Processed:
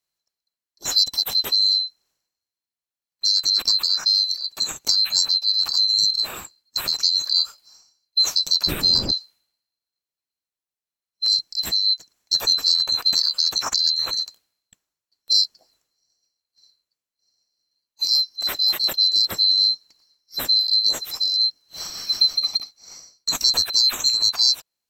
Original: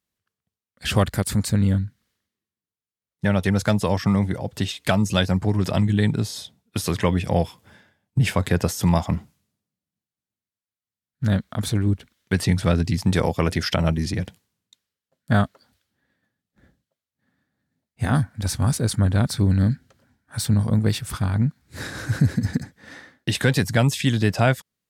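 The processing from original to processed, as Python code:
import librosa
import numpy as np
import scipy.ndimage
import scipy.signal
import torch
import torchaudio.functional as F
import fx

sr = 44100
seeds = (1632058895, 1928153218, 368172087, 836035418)

y = fx.band_swap(x, sr, width_hz=4000)
y = fx.dmg_wind(y, sr, seeds[0], corner_hz=300.0, level_db=-21.0, at=(8.66, 9.1), fade=0.02)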